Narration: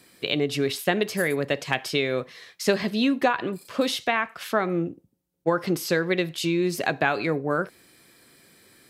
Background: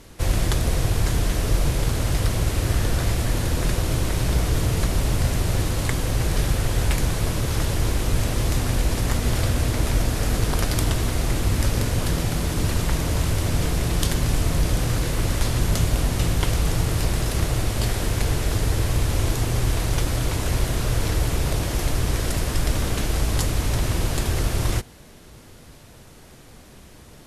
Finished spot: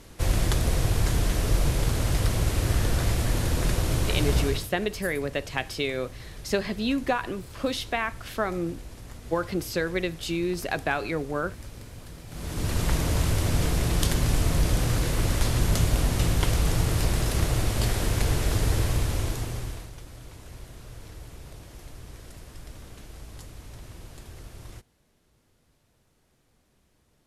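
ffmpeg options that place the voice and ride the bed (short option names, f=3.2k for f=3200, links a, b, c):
-filter_complex "[0:a]adelay=3850,volume=-4dB[a];[1:a]volume=16dB,afade=t=out:st=4.39:d=0.28:silence=0.125893,afade=t=in:st=12.27:d=0.62:silence=0.11885,afade=t=out:st=18.76:d=1.16:silence=0.112202[b];[a][b]amix=inputs=2:normalize=0"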